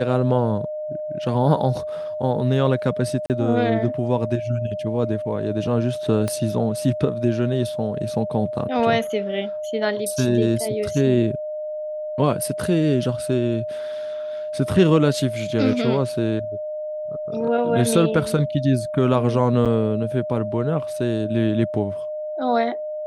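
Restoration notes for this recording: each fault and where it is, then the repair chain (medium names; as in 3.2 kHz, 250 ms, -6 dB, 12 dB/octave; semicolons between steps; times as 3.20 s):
whine 610 Hz -26 dBFS
3.26–3.30 s: dropout 38 ms
6.28 s: pop -12 dBFS
19.65–19.66 s: dropout 7.3 ms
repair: de-click; band-stop 610 Hz, Q 30; interpolate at 3.26 s, 38 ms; interpolate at 19.65 s, 7.3 ms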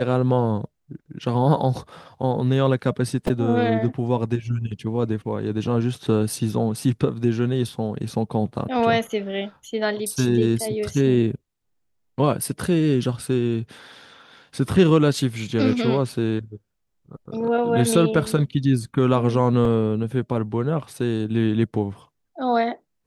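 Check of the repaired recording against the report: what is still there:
6.28 s: pop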